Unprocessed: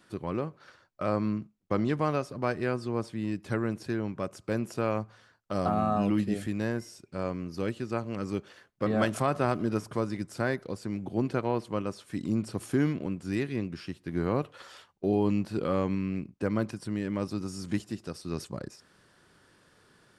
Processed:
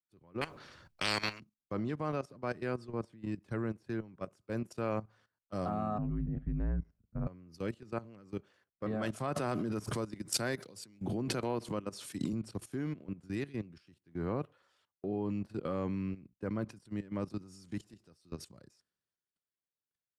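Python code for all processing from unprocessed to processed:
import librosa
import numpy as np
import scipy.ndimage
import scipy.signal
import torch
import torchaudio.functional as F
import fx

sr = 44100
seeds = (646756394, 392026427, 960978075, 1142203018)

y = fx.chain(x, sr, fx.bass_treble(bass_db=12, treble_db=-4),
    fx.spectral_comp(ratio=10.0), at=(0.41, 1.4))
y = fx.chain(y, sr, fx.lowpass(hz=1600.0, slope=12),
    fx.low_shelf_res(hz=220.0, db=8.0, q=3.0),
    fx.ring_mod(carrier_hz=56.0), at=(5.98, 7.27))
y = fx.chain(y, sr, fx.highpass(hz=97.0, slope=24),
    fx.high_shelf(hz=5400.0, db=4.5),
    fx.pre_swell(db_per_s=38.0), at=(9.36, 12.33))
y = fx.low_shelf(y, sr, hz=290.0, db=2.0)
y = fx.level_steps(y, sr, step_db=15)
y = fx.band_widen(y, sr, depth_pct=70)
y = y * 10.0 ** (-4.5 / 20.0)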